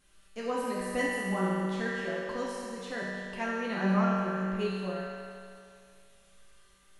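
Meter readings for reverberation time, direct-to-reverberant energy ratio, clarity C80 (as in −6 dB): 2.4 s, −8.0 dB, −1.5 dB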